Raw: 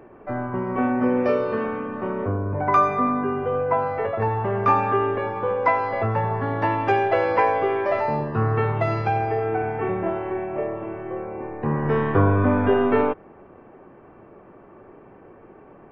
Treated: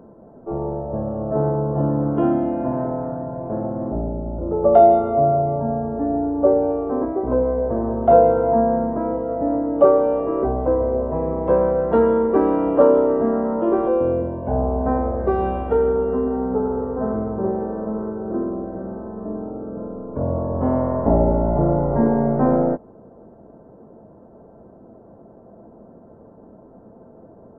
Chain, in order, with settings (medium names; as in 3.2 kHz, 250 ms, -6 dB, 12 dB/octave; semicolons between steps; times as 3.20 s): peaking EQ 1 kHz +9.5 dB 1.6 oct; speed mistake 78 rpm record played at 45 rpm; trim -2.5 dB